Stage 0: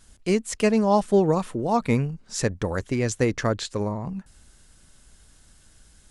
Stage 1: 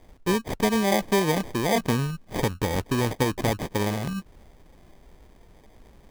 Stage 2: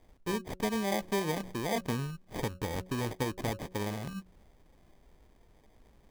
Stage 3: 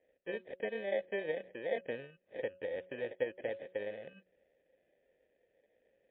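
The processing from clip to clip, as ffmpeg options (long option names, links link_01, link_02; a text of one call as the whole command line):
ffmpeg -i in.wav -af "acrusher=samples=32:mix=1:aa=0.000001,acompressor=threshold=-22dB:ratio=3,volume=2dB" out.wav
ffmpeg -i in.wav -af "bandreject=frequency=184.6:width_type=h:width=4,bandreject=frequency=369.2:width_type=h:width=4,bandreject=frequency=553.8:width_type=h:width=4,volume=-9dB" out.wav
ffmpeg -i in.wav -filter_complex "[0:a]aeval=exprs='0.141*(cos(1*acos(clip(val(0)/0.141,-1,1)))-cos(1*PI/2))+0.00794*(cos(7*acos(clip(val(0)/0.141,-1,1)))-cos(7*PI/2))':channel_layout=same,asplit=3[link_01][link_02][link_03];[link_01]bandpass=frequency=530:width_type=q:width=8,volume=0dB[link_04];[link_02]bandpass=frequency=1840:width_type=q:width=8,volume=-6dB[link_05];[link_03]bandpass=frequency=2480:width_type=q:width=8,volume=-9dB[link_06];[link_04][link_05][link_06]amix=inputs=3:normalize=0,volume=8dB" -ar 8000 -c:a libmp3lame -b:a 32k out.mp3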